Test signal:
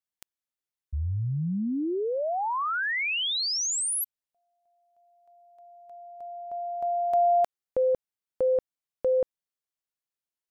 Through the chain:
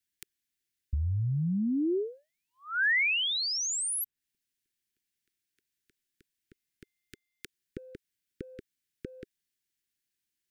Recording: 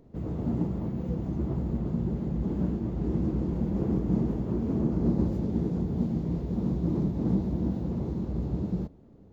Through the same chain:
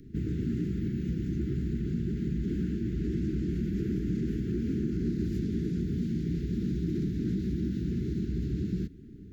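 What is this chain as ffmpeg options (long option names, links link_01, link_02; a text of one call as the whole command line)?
ffmpeg -i in.wav -filter_complex "[0:a]asplit=2[link_01][link_02];[link_02]alimiter=limit=-23.5dB:level=0:latency=1:release=29,volume=2dB[link_03];[link_01][link_03]amix=inputs=2:normalize=0,acrossover=split=600|1800[link_04][link_05][link_06];[link_04]acompressor=threshold=-29dB:ratio=4[link_07];[link_05]acompressor=threshold=-27dB:ratio=4[link_08];[link_06]acompressor=threshold=-33dB:ratio=4[link_09];[link_07][link_08][link_09]amix=inputs=3:normalize=0,asuperstop=centerf=780:order=12:qfactor=0.7,asoftclip=type=hard:threshold=-19dB" out.wav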